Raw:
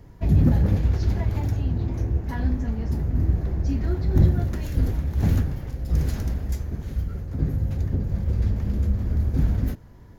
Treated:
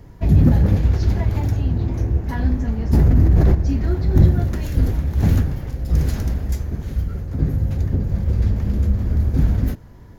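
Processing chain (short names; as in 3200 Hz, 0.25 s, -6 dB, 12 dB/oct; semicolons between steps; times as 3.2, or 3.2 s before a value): 2.93–3.55 fast leveller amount 100%; gain +4.5 dB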